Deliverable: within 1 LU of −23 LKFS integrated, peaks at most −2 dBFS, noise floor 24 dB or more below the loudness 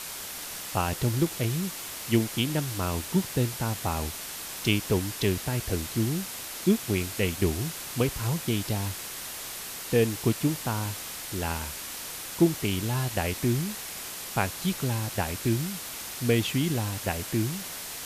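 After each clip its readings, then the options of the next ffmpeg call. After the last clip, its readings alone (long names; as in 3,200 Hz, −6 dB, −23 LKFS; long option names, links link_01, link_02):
background noise floor −38 dBFS; target noise floor −53 dBFS; integrated loudness −29.0 LKFS; sample peak −9.0 dBFS; target loudness −23.0 LKFS
→ -af "afftdn=noise_reduction=15:noise_floor=-38"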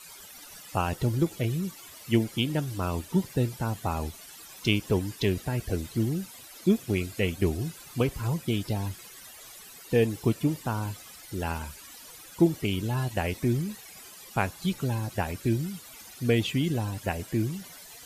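background noise floor −48 dBFS; target noise floor −53 dBFS
→ -af "afftdn=noise_reduction=6:noise_floor=-48"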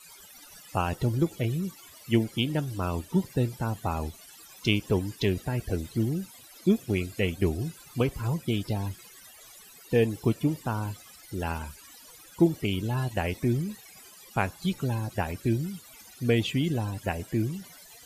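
background noise floor −51 dBFS; target noise floor −53 dBFS
→ -af "afftdn=noise_reduction=6:noise_floor=-51"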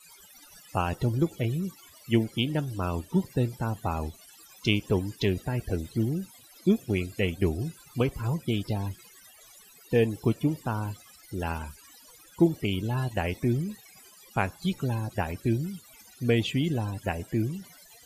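background noise floor −54 dBFS; integrated loudness −29.5 LKFS; sample peak −9.0 dBFS; target loudness −23.0 LKFS
→ -af "volume=6.5dB"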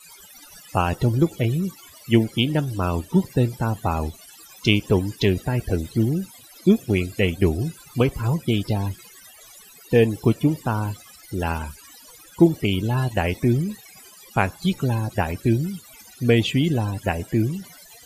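integrated loudness −23.0 LKFS; sample peak −2.5 dBFS; background noise floor −48 dBFS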